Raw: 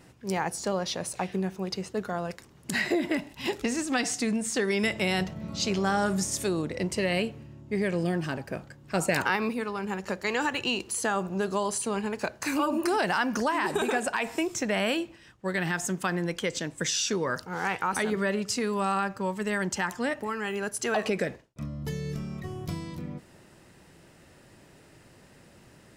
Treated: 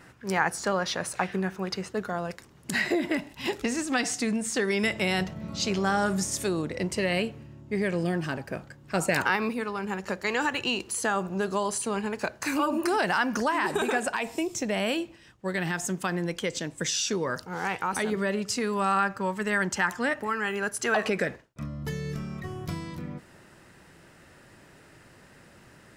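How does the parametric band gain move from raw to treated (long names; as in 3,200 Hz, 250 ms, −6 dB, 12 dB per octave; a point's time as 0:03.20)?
parametric band 1,500 Hz 1.1 octaves
0:01.72 +10.5 dB
0:02.12 +2 dB
0:14.09 +2 dB
0:14.35 −10 dB
0:15.03 −1.5 dB
0:18.26 −1.5 dB
0:19.02 +6 dB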